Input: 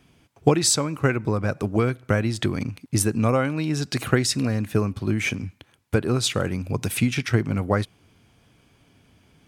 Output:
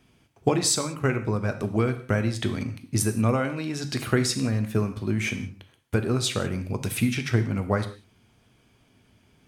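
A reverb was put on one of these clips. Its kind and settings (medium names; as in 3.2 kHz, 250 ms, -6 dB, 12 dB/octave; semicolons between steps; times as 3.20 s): gated-style reverb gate 210 ms falling, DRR 7.5 dB; trim -3.5 dB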